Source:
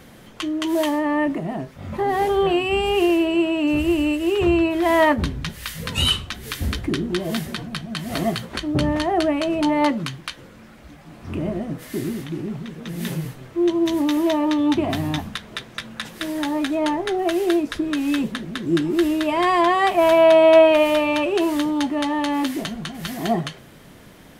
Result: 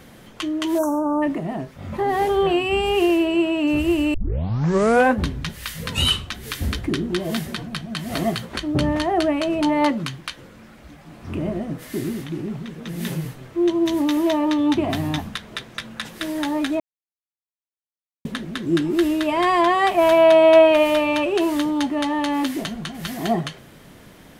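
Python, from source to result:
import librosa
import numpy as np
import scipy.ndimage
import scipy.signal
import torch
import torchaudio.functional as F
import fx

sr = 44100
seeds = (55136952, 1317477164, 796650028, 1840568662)

y = fx.spec_erase(x, sr, start_s=0.78, length_s=0.44, low_hz=1600.0, high_hz=5400.0)
y = fx.edit(y, sr, fx.tape_start(start_s=4.14, length_s=1.1),
    fx.silence(start_s=16.8, length_s=1.45), tone=tone)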